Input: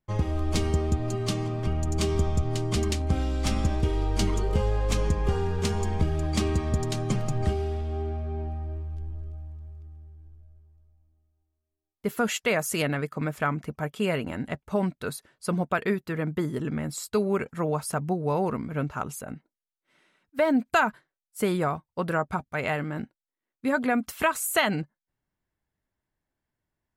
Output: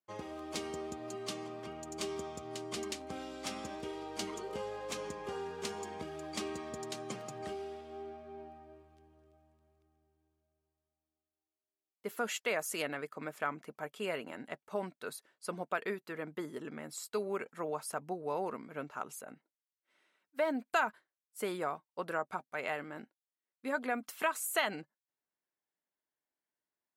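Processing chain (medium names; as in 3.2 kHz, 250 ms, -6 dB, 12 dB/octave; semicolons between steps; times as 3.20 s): high-pass 340 Hz 12 dB/octave; trim -8 dB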